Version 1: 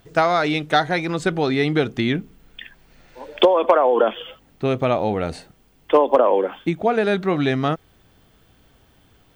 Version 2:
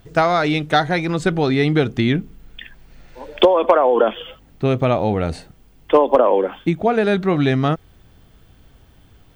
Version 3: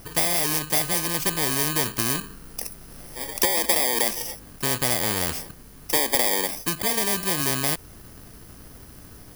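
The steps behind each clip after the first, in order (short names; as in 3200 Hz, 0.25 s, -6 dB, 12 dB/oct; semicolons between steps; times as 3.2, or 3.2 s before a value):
low shelf 140 Hz +9.5 dB; gain +1 dB
FFT order left unsorted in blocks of 32 samples; spectral compressor 2:1; gain -4.5 dB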